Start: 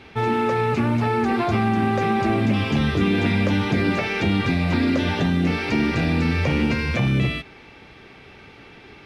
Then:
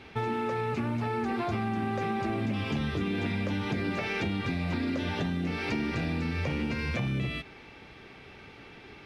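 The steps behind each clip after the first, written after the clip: compressor 4:1, threshold -24 dBFS, peak gain reduction 8 dB; gain -4 dB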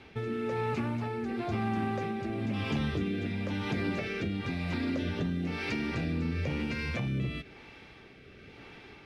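rotary speaker horn 1 Hz

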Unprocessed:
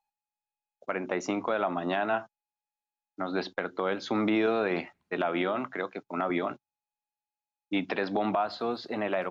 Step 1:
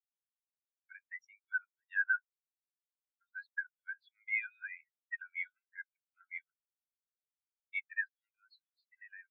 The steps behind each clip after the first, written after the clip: Chebyshev high-pass 1500 Hz, order 6; spectral expander 4:1; gain -2.5 dB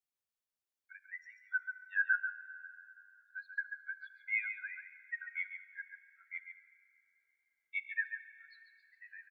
echo 0.139 s -8.5 dB; plate-style reverb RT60 3.2 s, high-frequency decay 0.7×, DRR 12.5 dB

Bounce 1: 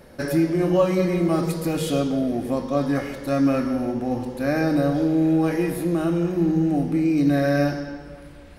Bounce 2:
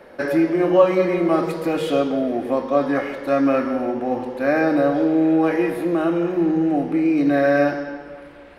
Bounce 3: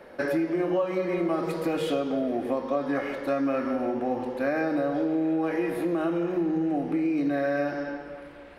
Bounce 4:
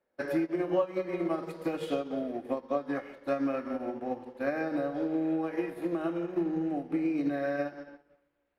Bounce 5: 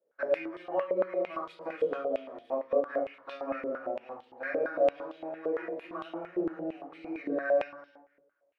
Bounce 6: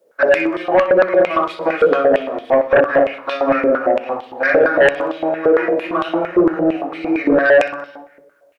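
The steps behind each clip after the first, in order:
three-band isolator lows -16 dB, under 290 Hz, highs -15 dB, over 3200 Hz; gain +6 dB
compressor 6:1, threshold -20 dBFS, peak gain reduction 11 dB; gain -3 dB
upward expander 2.5:1, over -44 dBFS
reverb RT60 0.40 s, pre-delay 4 ms, DRR -2.5 dB; stepped band-pass 8.8 Hz 460–3400 Hz; gain +4.5 dB
sine folder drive 8 dB, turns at -15 dBFS; feedback echo 62 ms, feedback 51%, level -17 dB; gain +8.5 dB

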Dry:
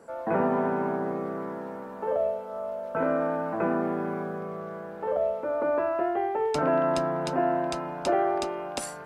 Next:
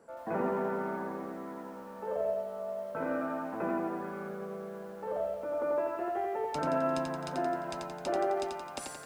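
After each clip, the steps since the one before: lo-fi delay 87 ms, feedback 55%, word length 9-bit, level -3.5 dB; gain -8 dB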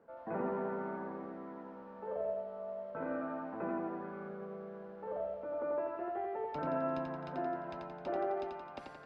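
air absorption 310 m; gain -4 dB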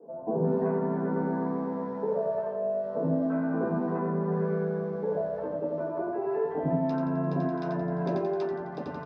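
compressor, threshold -40 dBFS, peak gain reduction 9 dB; three bands offset in time mids, lows, highs 80/350 ms, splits 240/870 Hz; reverb RT60 0.20 s, pre-delay 3 ms, DRR -3.5 dB

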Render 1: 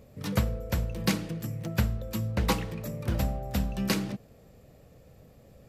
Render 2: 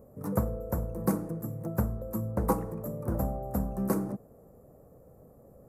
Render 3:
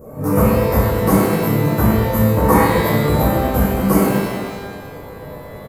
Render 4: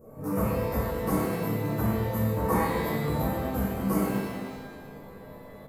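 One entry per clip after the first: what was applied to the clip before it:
EQ curve 100 Hz 0 dB, 400 Hz +7 dB, 1200 Hz +4 dB, 3200 Hz -29 dB, 10000 Hz +4 dB; gain -4 dB
in parallel at +0.5 dB: compressor, threshold -39 dBFS, peak gain reduction 17 dB; on the sum: doubler 28 ms -11 dB; shimmer reverb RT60 1.3 s, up +12 st, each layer -8 dB, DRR -10.5 dB; gain +4 dB
flange 0.52 Hz, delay 8.6 ms, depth 5.2 ms, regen -63%; analogue delay 0.131 s, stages 1024, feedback 84%, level -21 dB; on a send at -12 dB: reverb RT60 0.25 s, pre-delay 4 ms; on the sum: gain -9 dB

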